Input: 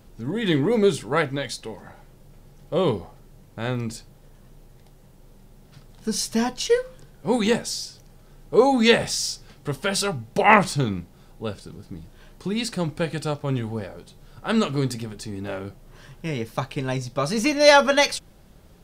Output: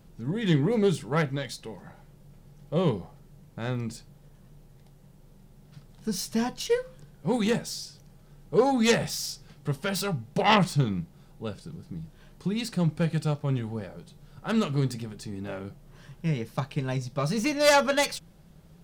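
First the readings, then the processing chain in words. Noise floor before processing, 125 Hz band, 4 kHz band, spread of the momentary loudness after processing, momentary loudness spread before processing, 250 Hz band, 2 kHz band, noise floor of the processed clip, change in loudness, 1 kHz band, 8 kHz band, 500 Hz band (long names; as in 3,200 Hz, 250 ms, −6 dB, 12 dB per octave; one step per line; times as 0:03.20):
−51 dBFS, +0.5 dB, −6.0 dB, 18 LU, 18 LU, −3.0 dB, −7.0 dB, −54 dBFS, −4.5 dB, −6.0 dB, −5.5 dB, −5.5 dB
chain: phase distortion by the signal itself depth 0.13 ms
parametric band 160 Hz +11 dB 0.4 octaves
level −5.5 dB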